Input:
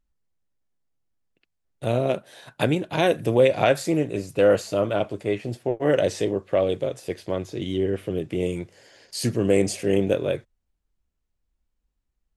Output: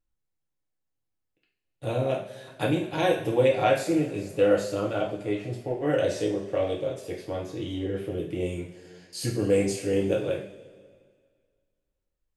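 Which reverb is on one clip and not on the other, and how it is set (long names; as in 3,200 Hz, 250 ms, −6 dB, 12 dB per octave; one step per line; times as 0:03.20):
coupled-rooms reverb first 0.46 s, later 1.9 s, from −16 dB, DRR −2.5 dB
level −8 dB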